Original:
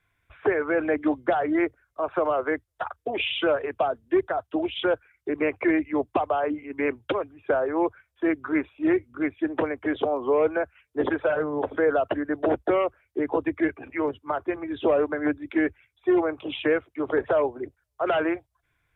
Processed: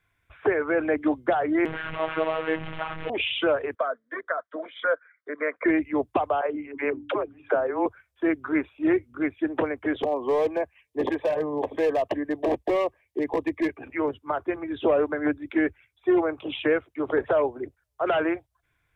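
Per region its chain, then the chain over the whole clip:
0:01.65–0:03.10: linear delta modulator 16 kbit/s, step −24.5 dBFS + phases set to zero 159 Hz
0:03.75–0:05.66: band-pass filter 390–3,200 Hz + parametric band 2,100 Hz +8.5 dB 1.5 octaves + phaser with its sweep stopped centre 540 Hz, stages 8
0:06.41–0:07.86: bass and treble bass −5 dB, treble −8 dB + hum removal 97.26 Hz, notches 3 + all-pass dispersion lows, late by 72 ms, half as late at 310 Hz
0:10.03–0:13.77: low-shelf EQ 94 Hz −6.5 dB + hard clipping −18.5 dBFS + Butterworth band-reject 1,400 Hz, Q 2.8
whole clip: no processing

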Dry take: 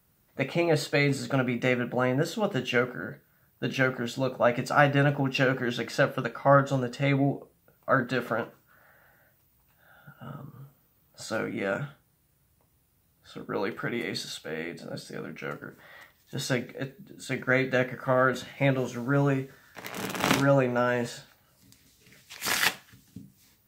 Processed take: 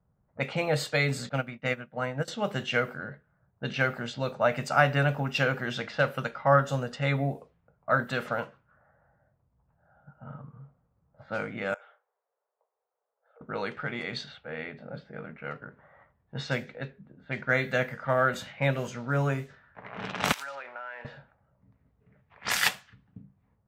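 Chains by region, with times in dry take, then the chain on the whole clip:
0:01.29–0:02.28: notch filter 390 Hz, Q 13 + expander for the loud parts 2.5 to 1, over −39 dBFS
0:11.74–0:13.41: Butterworth high-pass 410 Hz 72 dB per octave + high-shelf EQ 3,400 Hz −7 dB + downward compressor 2.5 to 1, threshold −52 dBFS
0:20.32–0:21.05: one scale factor per block 5 bits + high-pass filter 1,100 Hz + downward compressor 16 to 1, threshold −33 dBFS
whole clip: low-pass that shuts in the quiet parts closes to 820 Hz, open at −24.5 dBFS; parametric band 320 Hz −10.5 dB 0.74 octaves; low-pass that shuts in the quiet parts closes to 2,100 Hz, open at −25.5 dBFS

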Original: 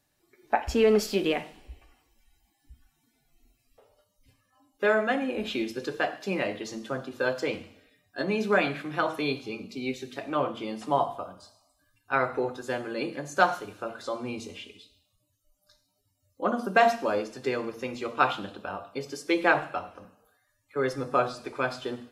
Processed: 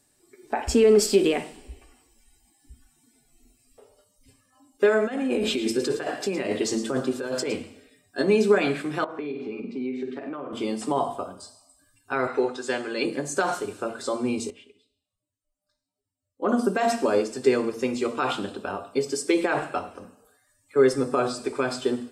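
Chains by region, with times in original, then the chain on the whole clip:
0:05.04–0:07.53: compressor whose output falls as the input rises −33 dBFS + single-tap delay 113 ms −12.5 dB
0:09.04–0:10.53: Chebyshev band-pass filter 180–1,900 Hz + flutter between parallel walls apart 8.1 metres, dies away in 0.36 s + downward compressor 10 to 1, threshold −36 dBFS
0:12.27–0:13.05: low-pass filter 4,200 Hz + spectral tilt +3 dB per octave
0:14.50–0:16.49: bass and treble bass −2 dB, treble −10 dB + expander for the loud parts, over −54 dBFS
whole clip: parametric band 8,400 Hz +10.5 dB 0.42 octaves; brickwall limiter −18 dBFS; thirty-one-band graphic EQ 250 Hz +7 dB, 400 Hz +9 dB, 5,000 Hz +4 dB, 8,000 Hz +5 dB; level +3 dB

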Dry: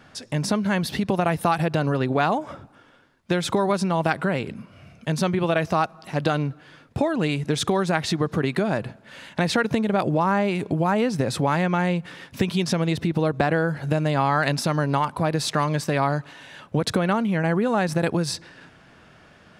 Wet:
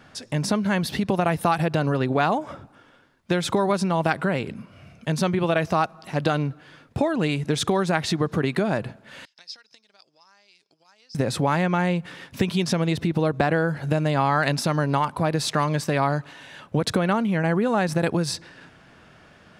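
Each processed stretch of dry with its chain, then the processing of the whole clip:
0:09.25–0:11.15: transient designer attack +8 dB, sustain +1 dB + resonant band-pass 5,100 Hz, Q 13
whole clip: no processing

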